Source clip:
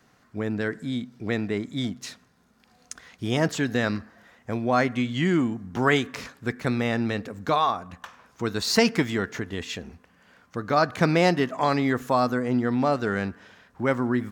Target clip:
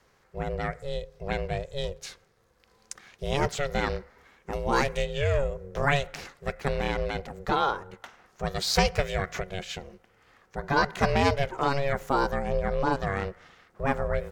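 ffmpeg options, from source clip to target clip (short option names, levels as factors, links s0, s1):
-filter_complex "[0:a]asettb=1/sr,asplit=3[s0][s1][s2];[s0]atrim=end=4.534[s3];[s1]atrim=start=4.53:end=5.05,asetpts=PTS-STARTPTS,afade=t=in:d=0.004:c=qsin,afade=t=out:st=0.516:d=0.004:c=qsin,bass=f=250:g=1,treble=f=4000:g=11[s4];[s2]atrim=start=5.046[s5];[s3][s4]acrossfade=d=0.004:c1=hsin:c2=qsin[s6];[s6][s5]acrossfade=d=0.004:c1=qsin:c2=hsin,asplit=3[s7][s8][s9];[s7]afade=t=out:st=8.57:d=0.02[s10];[s8]acompressor=mode=upward:threshold=0.0891:ratio=2.5,afade=t=in:st=8.57:d=0.02,afade=t=out:st=9.41:d=0.02[s11];[s9]afade=t=in:st=9.41:d=0.02[s12];[s10][s11][s12]amix=inputs=3:normalize=0,asettb=1/sr,asplit=3[s13][s14][s15];[s13]atrim=end=10.634[s16];[s14]atrim=start=10.63:end=11.1,asetpts=PTS-STARTPTS,afade=t=in:d=0.004:c=qsin,afade=t=out:st=0.466:d=0.004:c=qsin,aecho=1:1:2.3:0.71,atrim=end_sample=20727[s17];[s15]atrim=start=11.096[s18];[s16][s17]acrossfade=d=0.004:c1=hsin:c2=qsin[s19];[s19][s18]acrossfade=d=0.004:c1=qsin:c2=hsin,aeval=exprs='val(0)*sin(2*PI*280*n/s)':c=same"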